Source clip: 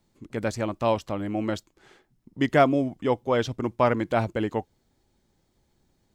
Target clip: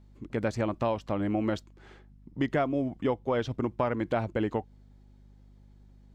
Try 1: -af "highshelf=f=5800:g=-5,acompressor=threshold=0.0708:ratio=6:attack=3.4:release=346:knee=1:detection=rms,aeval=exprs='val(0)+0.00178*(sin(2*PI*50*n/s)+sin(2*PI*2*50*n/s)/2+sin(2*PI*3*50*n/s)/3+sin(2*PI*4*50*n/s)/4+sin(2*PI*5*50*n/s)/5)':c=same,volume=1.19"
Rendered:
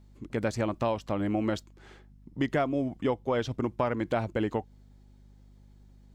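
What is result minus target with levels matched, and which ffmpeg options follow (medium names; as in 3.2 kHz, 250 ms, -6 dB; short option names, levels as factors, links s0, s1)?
8 kHz band +4.5 dB
-af "highshelf=f=5800:g=-13.5,acompressor=threshold=0.0708:ratio=6:attack=3.4:release=346:knee=1:detection=rms,aeval=exprs='val(0)+0.00178*(sin(2*PI*50*n/s)+sin(2*PI*2*50*n/s)/2+sin(2*PI*3*50*n/s)/3+sin(2*PI*4*50*n/s)/4+sin(2*PI*5*50*n/s)/5)':c=same,volume=1.19"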